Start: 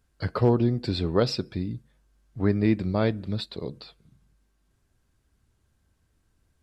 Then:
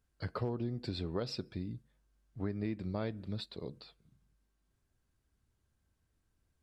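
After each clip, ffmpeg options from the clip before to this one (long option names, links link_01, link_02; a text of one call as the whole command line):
ffmpeg -i in.wav -af "acompressor=threshold=-23dB:ratio=6,volume=-9dB" out.wav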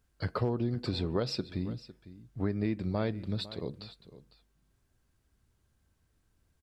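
ffmpeg -i in.wav -af "aecho=1:1:504:0.15,volume=5.5dB" out.wav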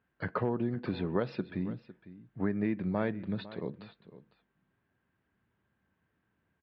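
ffmpeg -i in.wav -af "highpass=140,equalizer=frequency=190:width_type=q:width=4:gain=4,equalizer=frequency=940:width_type=q:width=4:gain=3,equalizer=frequency=1700:width_type=q:width=4:gain=6,lowpass=frequency=2900:width=0.5412,lowpass=frequency=2900:width=1.3066" out.wav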